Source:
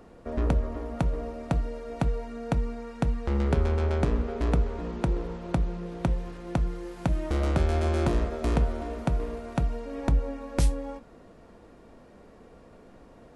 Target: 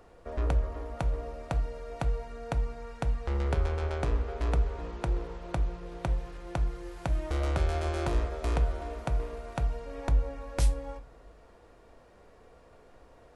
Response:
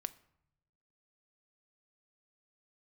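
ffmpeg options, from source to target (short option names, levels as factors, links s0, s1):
-filter_complex "[0:a]equalizer=f=220:t=o:w=1.1:g=-12[s0];[1:a]atrim=start_sample=2205[s1];[s0][s1]afir=irnorm=-1:irlink=0"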